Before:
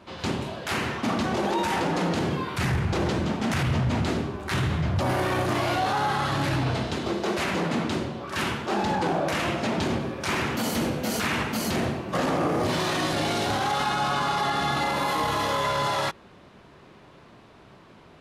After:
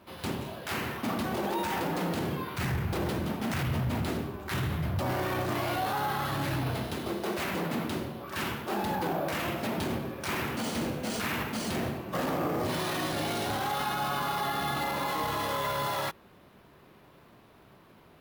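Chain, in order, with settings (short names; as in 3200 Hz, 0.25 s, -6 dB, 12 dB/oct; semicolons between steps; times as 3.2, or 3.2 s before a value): careless resampling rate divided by 3×, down none, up hold; gain -5.5 dB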